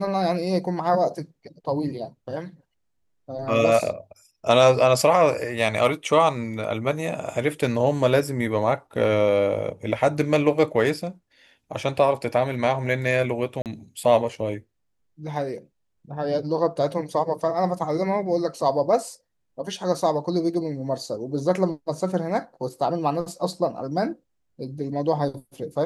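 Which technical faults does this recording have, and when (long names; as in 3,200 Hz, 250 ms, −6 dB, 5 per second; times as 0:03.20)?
0:13.62–0:13.66: drop-out 38 ms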